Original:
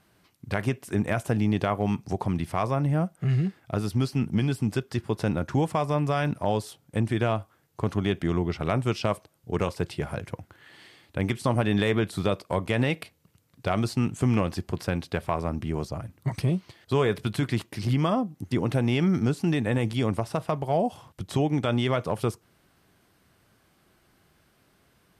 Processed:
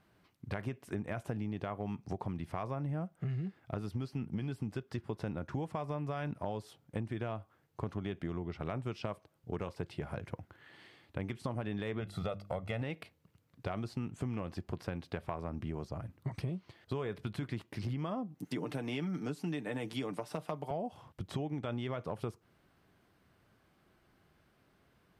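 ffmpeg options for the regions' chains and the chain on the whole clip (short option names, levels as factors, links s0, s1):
-filter_complex "[0:a]asettb=1/sr,asplit=3[s0][s1][s2];[s0]atrim=end=12.004[s3];[s1]atrim=start=12:end=12.82,asetpts=PTS-STARTPTS,afade=t=in:d=0.004:c=qsin,afade=t=out:st=0.816:d=0.004:c=qsin,bandreject=f=50:t=h:w=6,bandreject=f=100:t=h:w=6,bandreject=f=150:t=h:w=6,bandreject=f=200:t=h:w=6,bandreject=f=250:t=h:w=6,bandreject=f=300:t=h:w=6,bandreject=f=350:t=h:w=6,aecho=1:1:1.5:0.64,atrim=end_sample=36162[s4];[s2]atrim=start=12.816[s5];[s3][s4]acrossfade=d=0.004:c1=hsin:c2=qsin[s6];[s6][s5]acrossfade=d=0.004:c1=qsin:c2=hsin,asettb=1/sr,asplit=3[s7][s8][s9];[s7]atrim=end=18.394[s10];[s8]atrim=start=18.39:end=20.71,asetpts=PTS-STARTPTS,afade=t=in:d=0.004:c=qsin,afade=t=out:st=2.316:d=0.004:c=qsin,highpass=f=160:w=0.5412,highpass=f=160:w=1.3066,highshelf=f=4300:g=9,aecho=1:1:6.7:0.52,atrim=end_sample=102312[s11];[s9]atrim=start=20.706[s12];[s10][s11]acrossfade=d=0.004:c1=hsin:c2=qsin[s13];[s13][s12]acrossfade=d=0.004:c1=qsin:c2=hsin,equalizer=f=10000:t=o:w=2.1:g=-9.5,acompressor=threshold=0.0316:ratio=5,volume=0.596"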